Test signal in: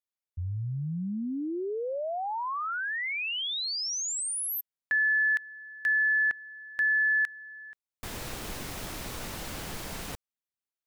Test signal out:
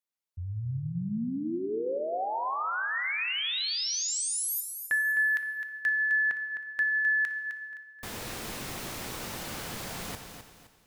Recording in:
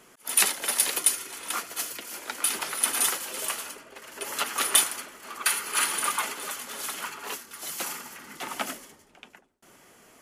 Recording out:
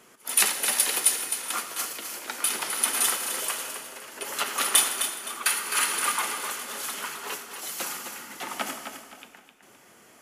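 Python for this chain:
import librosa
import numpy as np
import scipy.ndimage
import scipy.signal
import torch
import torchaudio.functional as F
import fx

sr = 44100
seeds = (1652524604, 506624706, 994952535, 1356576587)

y = fx.low_shelf(x, sr, hz=67.0, db=-9.5)
y = fx.echo_feedback(y, sr, ms=259, feedback_pct=34, wet_db=-8.5)
y = fx.rev_gated(y, sr, seeds[0], gate_ms=450, shape='falling', drr_db=8.5)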